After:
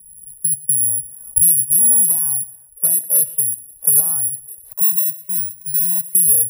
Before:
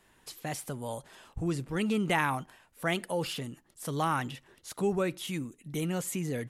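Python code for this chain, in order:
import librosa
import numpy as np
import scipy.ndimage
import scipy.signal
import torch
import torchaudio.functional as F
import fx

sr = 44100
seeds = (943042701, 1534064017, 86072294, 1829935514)

p1 = fx.recorder_agc(x, sr, target_db=-18.5, rise_db_per_s=8.0, max_gain_db=30)
p2 = fx.filter_sweep_lowpass(p1, sr, from_hz=200.0, to_hz=430.0, start_s=0.22, end_s=3.01, q=2.2)
p3 = fx.overload_stage(p2, sr, gain_db=21.0, at=(1.78, 3.14), fade=0.02)
p4 = (np.kron(p3[::4], np.eye(4)[0]) * 4)[:len(p3)]
p5 = fx.fixed_phaser(p4, sr, hz=2200.0, stages=8, at=(4.7, 6.04))
p6 = fx.cheby_harmonics(p5, sr, harmonics=(5,), levels_db=(-25,), full_scale_db=-1.5)
p7 = fx.tone_stack(p6, sr, knobs='10-0-10')
p8 = p7 + fx.echo_feedback(p7, sr, ms=118, feedback_pct=29, wet_db=-20.5, dry=0)
p9 = fx.band_squash(p8, sr, depth_pct=40)
y = p9 * librosa.db_to_amplitude(7.0)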